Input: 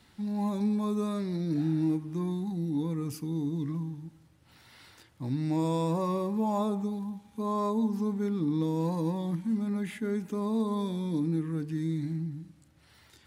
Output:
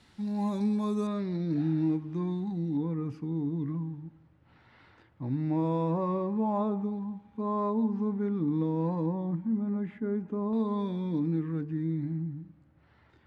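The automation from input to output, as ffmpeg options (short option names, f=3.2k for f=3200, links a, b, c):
-af "asetnsamples=n=441:p=0,asendcmd='1.07 lowpass f 3500;2.77 lowpass f 1900;9.06 lowpass f 1200;10.53 lowpass f 2700;11.61 lowpass f 1600',lowpass=8.8k"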